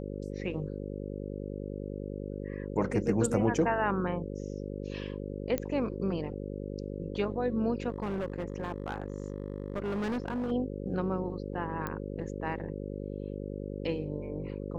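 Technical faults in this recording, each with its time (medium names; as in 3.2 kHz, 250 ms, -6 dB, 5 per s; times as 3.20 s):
buzz 50 Hz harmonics 11 -38 dBFS
5.58 s: pop -17 dBFS
7.89–10.52 s: clipped -29 dBFS
11.87 s: pop -21 dBFS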